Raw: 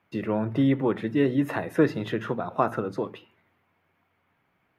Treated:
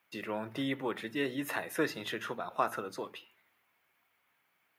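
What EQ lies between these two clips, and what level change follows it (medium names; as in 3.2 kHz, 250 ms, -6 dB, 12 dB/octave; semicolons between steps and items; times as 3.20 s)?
tilt EQ +4 dB/octave; -5.5 dB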